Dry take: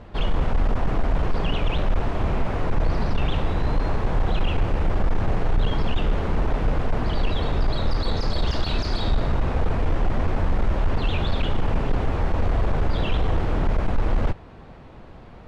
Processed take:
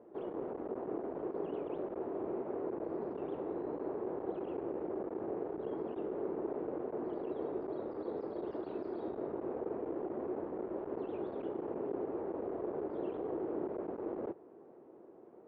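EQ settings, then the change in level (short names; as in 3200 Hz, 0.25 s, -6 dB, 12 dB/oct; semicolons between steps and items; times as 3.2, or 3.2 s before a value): ladder band-pass 410 Hz, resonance 60%; +1.0 dB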